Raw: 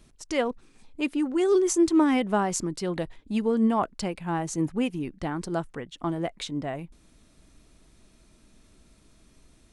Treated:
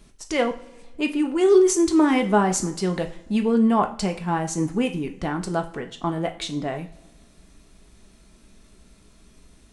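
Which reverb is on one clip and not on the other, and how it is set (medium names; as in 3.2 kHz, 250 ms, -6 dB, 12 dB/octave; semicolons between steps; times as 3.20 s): two-slope reverb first 0.4 s, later 1.8 s, from -21 dB, DRR 4.5 dB; trim +3.5 dB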